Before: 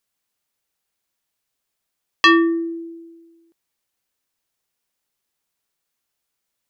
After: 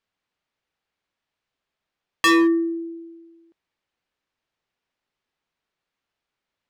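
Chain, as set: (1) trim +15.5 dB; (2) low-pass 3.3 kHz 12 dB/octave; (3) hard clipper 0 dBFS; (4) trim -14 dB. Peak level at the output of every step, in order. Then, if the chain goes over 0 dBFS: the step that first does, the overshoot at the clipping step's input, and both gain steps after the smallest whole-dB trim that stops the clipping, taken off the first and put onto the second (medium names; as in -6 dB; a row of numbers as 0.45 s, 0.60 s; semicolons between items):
+9.5 dBFS, +10.0 dBFS, 0.0 dBFS, -14.0 dBFS; step 1, 10.0 dB; step 1 +5.5 dB, step 4 -4 dB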